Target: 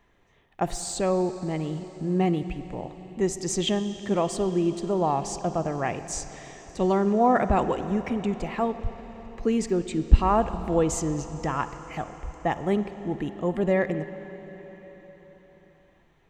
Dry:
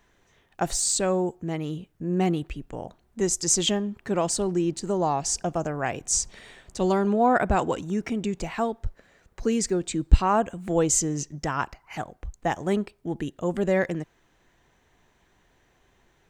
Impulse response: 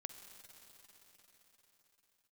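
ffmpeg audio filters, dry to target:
-filter_complex "[0:a]bandreject=f=1.5k:w=8.4,asplit=2[a][b];[1:a]atrim=start_sample=2205,lowpass=3.7k[c];[b][c]afir=irnorm=-1:irlink=0,volume=8dB[d];[a][d]amix=inputs=2:normalize=0,volume=-7.5dB"

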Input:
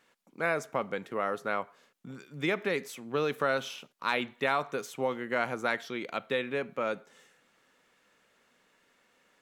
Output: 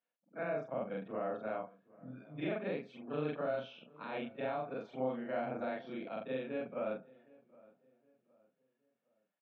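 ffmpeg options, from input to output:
-filter_complex "[0:a]afftfilt=real='re':imag='-im':win_size=4096:overlap=0.75,bandreject=f=2k:w=9.4,afftdn=nr=17:nf=-59,adynamicequalizer=threshold=0.00355:dfrequency=1800:dqfactor=1.1:tfrequency=1800:tqfactor=1.1:attack=5:release=100:ratio=0.375:range=3.5:mode=cutabove:tftype=bell,acrossover=split=450[a][b];[a]dynaudnorm=f=170:g=5:m=6.5dB[c];[b]alimiter=level_in=6.5dB:limit=-24dB:level=0:latency=1:release=82,volume=-6.5dB[d];[c][d]amix=inputs=2:normalize=0,highpass=150,equalizer=f=390:t=q:w=4:g=-7,equalizer=f=660:t=q:w=4:g=8,equalizer=f=1.1k:t=q:w=4:g=-3,lowpass=f=3.3k:w=0.5412,lowpass=f=3.3k:w=1.3066,asplit=2[e][f];[f]adelay=766,lowpass=f=1.7k:p=1,volume=-23dB,asplit=2[g][h];[h]adelay=766,lowpass=f=1.7k:p=1,volume=0.38,asplit=2[i][j];[j]adelay=766,lowpass=f=1.7k:p=1,volume=0.38[k];[e][g][i][k]amix=inputs=4:normalize=0,volume=-3.5dB"

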